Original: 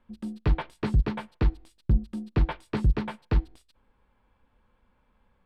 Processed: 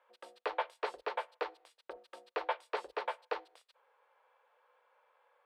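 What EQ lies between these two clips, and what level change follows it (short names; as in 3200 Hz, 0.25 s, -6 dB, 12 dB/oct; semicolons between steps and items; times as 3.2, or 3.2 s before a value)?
elliptic high-pass 490 Hz, stop band 60 dB; dynamic EQ 1700 Hz, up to -4 dB, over -51 dBFS, Q 0.84; high shelf 4000 Hz -11 dB; +4.0 dB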